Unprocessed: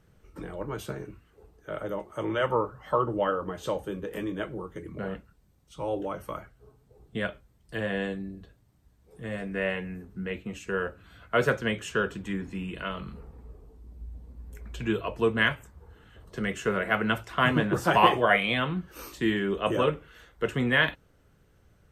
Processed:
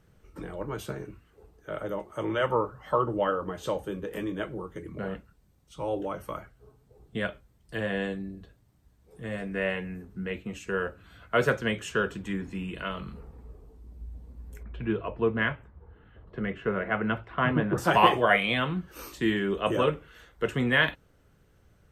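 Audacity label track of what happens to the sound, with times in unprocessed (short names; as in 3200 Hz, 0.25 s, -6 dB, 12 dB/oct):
14.630000	17.780000	air absorption 460 m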